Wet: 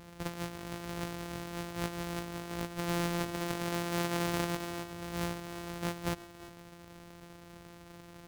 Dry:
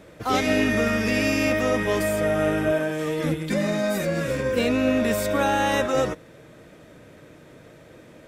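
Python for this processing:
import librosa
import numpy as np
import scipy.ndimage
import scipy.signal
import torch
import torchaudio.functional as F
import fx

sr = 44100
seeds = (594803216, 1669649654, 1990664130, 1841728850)

p1 = np.r_[np.sort(x[:len(x) // 256 * 256].reshape(-1, 256), axis=1).ravel(), x[len(x) // 256 * 256:]]
p2 = fx.low_shelf(p1, sr, hz=93.0, db=-10.5, at=(3.37, 4.84))
p3 = fx.over_compress(p2, sr, threshold_db=-27.0, ratio=-0.5)
p4 = p3 + fx.echo_single(p3, sr, ms=351, db=-16.5, dry=0)
y = F.gain(torch.from_numpy(p4), -8.5).numpy()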